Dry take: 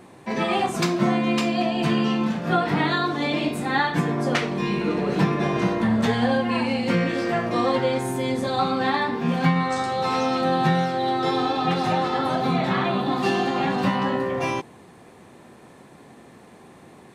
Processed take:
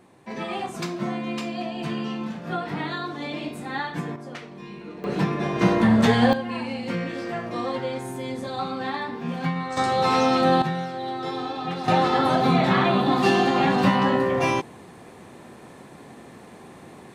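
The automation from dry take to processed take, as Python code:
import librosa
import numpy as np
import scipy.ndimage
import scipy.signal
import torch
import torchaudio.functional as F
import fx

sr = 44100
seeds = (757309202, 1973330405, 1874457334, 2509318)

y = fx.gain(x, sr, db=fx.steps((0.0, -7.5), (4.16, -15.0), (5.04, -3.0), (5.61, 3.5), (6.33, -6.5), (9.77, 3.0), (10.62, -7.0), (11.88, 3.0)))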